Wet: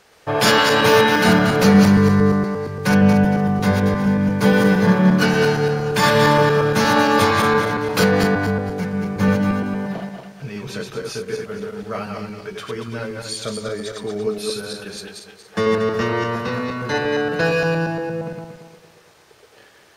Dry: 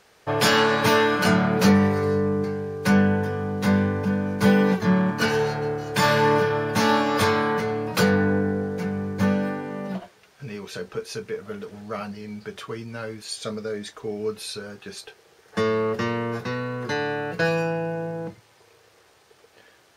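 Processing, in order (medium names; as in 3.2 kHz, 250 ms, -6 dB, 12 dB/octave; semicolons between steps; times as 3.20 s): backward echo that repeats 116 ms, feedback 57%, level -3 dB; trim +3 dB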